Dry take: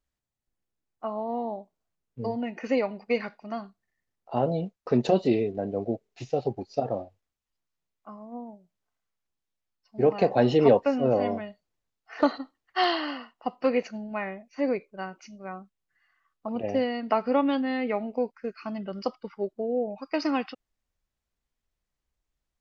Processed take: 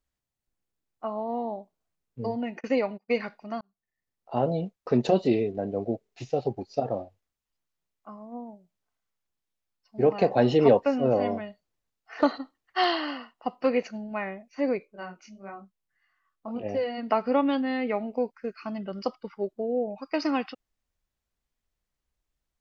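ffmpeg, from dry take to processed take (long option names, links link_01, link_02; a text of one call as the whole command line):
ffmpeg -i in.wav -filter_complex "[0:a]asplit=3[link_01][link_02][link_03];[link_01]afade=type=out:start_time=2.59:duration=0.02[link_04];[link_02]agate=range=-27dB:threshold=-39dB:ratio=16:release=100:detection=peak,afade=type=in:start_time=2.59:duration=0.02,afade=type=out:start_time=3.08:duration=0.02[link_05];[link_03]afade=type=in:start_time=3.08:duration=0.02[link_06];[link_04][link_05][link_06]amix=inputs=3:normalize=0,asplit=3[link_07][link_08][link_09];[link_07]afade=type=out:start_time=14.85:duration=0.02[link_10];[link_08]flanger=delay=19:depth=4.8:speed=1.8,afade=type=in:start_time=14.85:duration=0.02,afade=type=out:start_time=16.97:duration=0.02[link_11];[link_09]afade=type=in:start_time=16.97:duration=0.02[link_12];[link_10][link_11][link_12]amix=inputs=3:normalize=0,asplit=2[link_13][link_14];[link_13]atrim=end=3.61,asetpts=PTS-STARTPTS,afade=type=out:start_time=3.606:duration=0.004:curve=hsin[link_15];[link_14]atrim=start=3.61,asetpts=PTS-STARTPTS,afade=type=in:duration=0.79[link_16];[link_15][link_16]concat=n=2:v=0:a=1" out.wav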